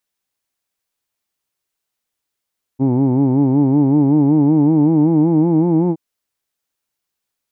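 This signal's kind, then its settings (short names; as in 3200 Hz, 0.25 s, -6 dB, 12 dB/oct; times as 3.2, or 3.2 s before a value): formant-synthesis vowel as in who'd, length 3.17 s, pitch 128 Hz, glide +5 st, vibrato depth 1.05 st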